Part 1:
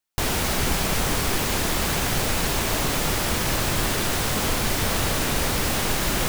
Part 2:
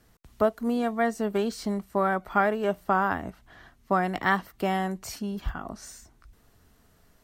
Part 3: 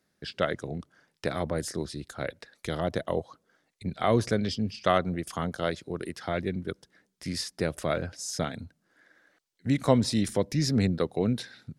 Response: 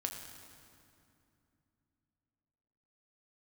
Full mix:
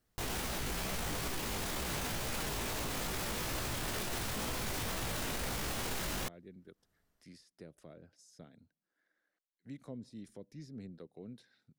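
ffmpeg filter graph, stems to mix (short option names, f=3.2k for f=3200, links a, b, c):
-filter_complex "[0:a]flanger=delay=15.5:depth=4.5:speed=2.2,volume=0dB[a];[1:a]volume=-18dB[b];[2:a]equalizer=f=78:w=1.2:g=-9,acrossover=split=490[c][d];[d]acompressor=threshold=-40dB:ratio=10[e];[c][e]amix=inputs=2:normalize=0,volume=-20dB,asplit=2[f][g];[g]apad=whole_len=318878[h];[b][h]sidechaincompress=threshold=-58dB:ratio=8:attack=32:release=280[i];[a][i][f]amix=inputs=3:normalize=0,alimiter=level_in=4.5dB:limit=-24dB:level=0:latency=1:release=13,volume=-4.5dB"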